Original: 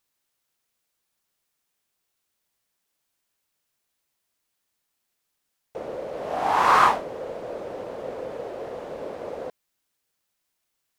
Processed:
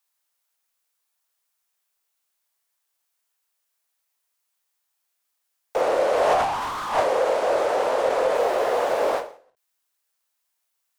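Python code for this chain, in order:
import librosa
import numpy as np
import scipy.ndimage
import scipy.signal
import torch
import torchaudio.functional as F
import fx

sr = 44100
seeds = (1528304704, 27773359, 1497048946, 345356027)

y = scipy.signal.sosfilt(scipy.signal.butter(2, 830.0, 'highpass', fs=sr, output='sos'), x)
y = fx.high_shelf(y, sr, hz=5200.0, db=7.5)
y = fx.room_early_taps(y, sr, ms=(23, 52), db=(-8.5, -9.0))
y = 10.0 ** (-17.5 / 20.0) * np.tanh(y / 10.0 ** (-17.5 / 20.0))
y = fx.lowpass(y, sr, hz=11000.0, slope=24, at=(5.81, 8.35))
y = fx.leveller(y, sr, passes=3)
y = fx.over_compress(y, sr, threshold_db=-24.0, ratio=-0.5)
y = fx.tilt_shelf(y, sr, db=5.0, hz=1200.0)
y = fx.end_taper(y, sr, db_per_s=130.0)
y = y * librosa.db_to_amplitude(3.5)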